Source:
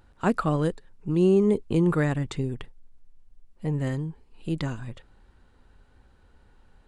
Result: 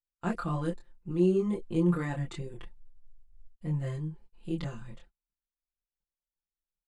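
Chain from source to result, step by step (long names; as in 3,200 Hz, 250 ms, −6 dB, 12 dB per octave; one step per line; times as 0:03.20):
noise gate −47 dBFS, range −40 dB
comb filter 5.8 ms, depth 93%
multi-voice chorus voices 6, 0.94 Hz, delay 25 ms, depth 3 ms
level −7 dB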